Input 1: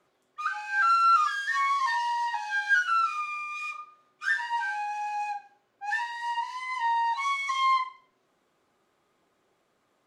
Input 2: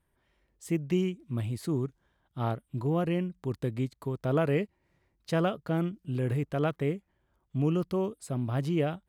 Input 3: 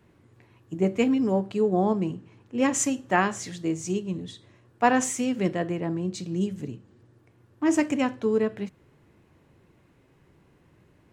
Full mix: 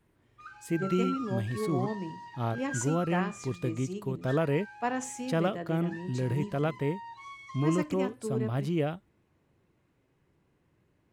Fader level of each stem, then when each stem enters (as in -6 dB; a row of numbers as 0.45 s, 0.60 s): -17.5 dB, -1.0 dB, -10.5 dB; 0.00 s, 0.00 s, 0.00 s